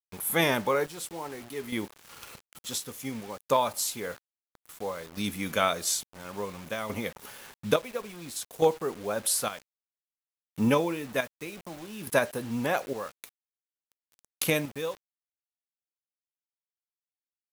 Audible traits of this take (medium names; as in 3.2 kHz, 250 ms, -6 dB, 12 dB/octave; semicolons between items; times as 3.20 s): chopped level 0.58 Hz, depth 65%, duty 50%; a quantiser's noise floor 8-bit, dither none